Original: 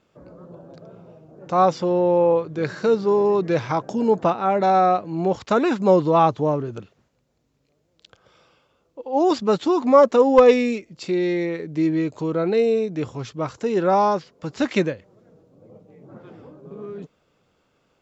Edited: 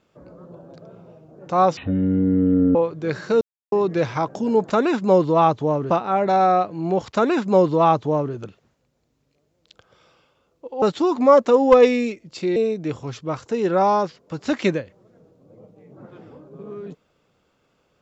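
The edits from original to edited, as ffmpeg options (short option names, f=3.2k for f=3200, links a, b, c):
-filter_complex "[0:a]asplit=9[a][b][c][d][e][f][g][h][i];[a]atrim=end=1.774[j];[b]atrim=start=1.77:end=2.29,asetpts=PTS-STARTPTS,asetrate=23373,aresample=44100[k];[c]atrim=start=2.286:end=2.95,asetpts=PTS-STARTPTS,afade=t=out:st=0.66:d=0.004:c=hsin[l];[d]atrim=start=2.95:end=3.26,asetpts=PTS-STARTPTS,volume=0[m];[e]atrim=start=3.26:end=4.242,asetpts=PTS-STARTPTS,afade=t=in:d=0.004:c=hsin[n];[f]atrim=start=5.478:end=6.682[o];[g]atrim=start=4.238:end=9.162[p];[h]atrim=start=9.478:end=11.222[q];[i]atrim=start=12.678[r];[j][k]acrossfade=d=0.004:c1=hsin:c2=hsin[s];[l][m][n]concat=n=3:v=0:a=1[t];[s][t]acrossfade=d=0.004:c1=hsin:c2=hsin[u];[u][o]acrossfade=d=0.004:c1=hsin:c2=hsin[v];[v][p]acrossfade=d=0.004:c1=hsin:c2=hsin[w];[w][q]acrossfade=d=0.004:c1=hsin:c2=hsin[x];[x][r]acrossfade=d=0.004:c1=hsin:c2=hsin"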